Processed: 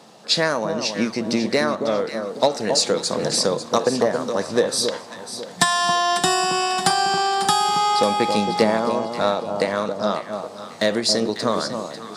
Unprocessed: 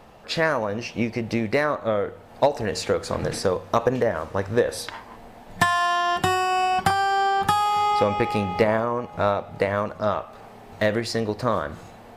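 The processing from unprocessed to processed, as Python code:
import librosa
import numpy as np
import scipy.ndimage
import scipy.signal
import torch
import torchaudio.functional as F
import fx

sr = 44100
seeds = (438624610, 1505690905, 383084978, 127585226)

y = fx.low_shelf(x, sr, hz=240.0, db=6.5)
y = np.clip(y, -10.0 ** (-7.0 / 20.0), 10.0 ** (-7.0 / 20.0))
y = scipy.signal.sosfilt(scipy.signal.butter(4, 170.0, 'highpass', fs=sr, output='sos'), y)
y = fx.band_shelf(y, sr, hz=5900.0, db=12.0, octaves=1.7)
y = fx.echo_alternate(y, sr, ms=273, hz=1100.0, feedback_pct=59, wet_db=-6.0)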